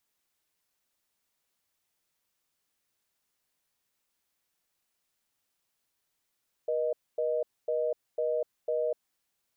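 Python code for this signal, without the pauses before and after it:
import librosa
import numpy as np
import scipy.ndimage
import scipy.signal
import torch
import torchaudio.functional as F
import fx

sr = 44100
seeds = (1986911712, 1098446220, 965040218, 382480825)

y = fx.call_progress(sr, length_s=2.33, kind='reorder tone', level_db=-29.0)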